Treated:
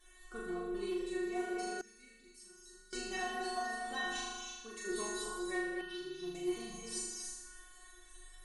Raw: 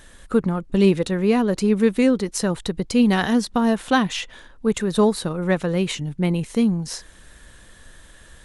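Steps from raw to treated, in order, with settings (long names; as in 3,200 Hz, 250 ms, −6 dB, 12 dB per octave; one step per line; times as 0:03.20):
stiff-string resonator 360 Hz, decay 0.61 s, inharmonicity 0.002
reverb whose tail is shaped and stops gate 310 ms rising, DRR 1.5 dB
reverb reduction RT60 0.7 s
0:04.19–0:04.85: downward compressor 4 to 1, threshold −53 dBFS, peak gain reduction 9.5 dB
parametric band 110 Hz −12.5 dB 1.7 octaves
asymmetric clip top −33 dBFS, bottom −31 dBFS
on a send: flutter between parallel walls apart 6.8 metres, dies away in 1.1 s
on the sum: speech leveller within 5 dB 0.5 s
0:01.81–0:02.93: guitar amp tone stack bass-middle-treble 6-0-2
0:05.81–0:06.35: phaser with its sweep stopped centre 2,200 Hz, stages 6
level +2.5 dB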